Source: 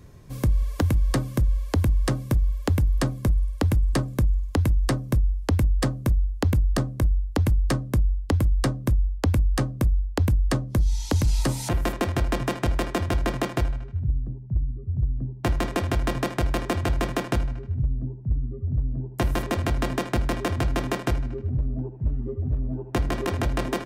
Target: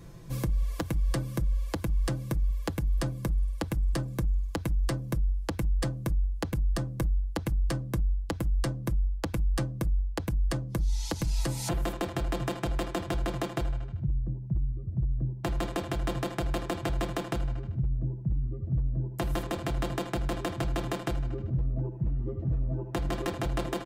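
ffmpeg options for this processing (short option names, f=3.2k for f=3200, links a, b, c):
-af "aecho=1:1:6:0.71,alimiter=limit=-20.5dB:level=0:latency=1:release=337"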